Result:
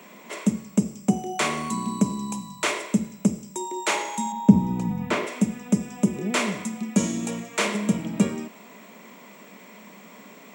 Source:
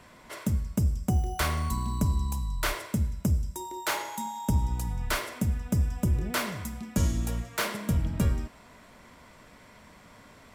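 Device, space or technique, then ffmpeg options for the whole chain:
old television with a line whistle: -filter_complex "[0:a]asettb=1/sr,asplit=3[a][b][c];[a]atrim=end=4.324[d];[b]atrim=start=4.32:end=5.27,asetpts=PTS-STARTPTS,afade=t=in:d=0.004:c=qsin,afade=t=out:st=0.946:d=0.004:c=qsin,aemphasis=mode=reproduction:type=riaa[e];[c]atrim=start=5.266[f];[d][e]acrossfade=d=0.004:c1=hsin:c2=qsin[g];[g][f]acrossfade=d=0.004:c1=qsin:c2=hsin,highpass=f=190:w=0.5412,highpass=f=190:w=1.3066,equalizer=f=200:t=q:w=4:g=8,equalizer=f=410:t=q:w=4:g=5,equalizer=f=1.5k:t=q:w=4:g=-6,equalizer=f=2.4k:t=q:w=4:g=5,equalizer=f=4.7k:t=q:w=4:g=-5,equalizer=f=7.3k:t=q:w=4:g=5,lowpass=f=8.9k:w=0.5412,lowpass=f=8.9k:w=1.3066,aeval=exprs='val(0)+0.001*sin(2*PI*15734*n/s)':c=same,volume=5.5dB"

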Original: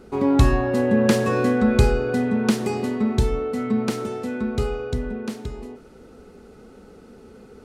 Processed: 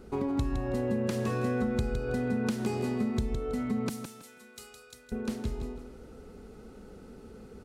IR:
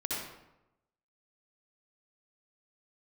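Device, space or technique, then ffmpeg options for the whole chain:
ASMR close-microphone chain: -filter_complex "[0:a]asettb=1/sr,asplit=3[a][b][c];[a]atrim=end=3.894[d];[b]atrim=start=3.89:end=5.12,asetpts=PTS-STARTPTS,afade=t=in:d=0.004:c=qsin,afade=t=out:st=1.226:d=0.004:c=qsin,aderivative[e];[c]atrim=start=5.116[f];[d][e]acrossfade=d=0.004:c1=hsin:c2=qsin[g];[g][f]acrossfade=d=0.004:c1=qsin:c2=hsin,lowshelf=f=120:g=8,acompressor=threshold=-22dB:ratio=10,highshelf=f=8.6k:g=4,aecho=1:1:162|324|486:0.422|0.101|0.0243,volume=-5.5dB"

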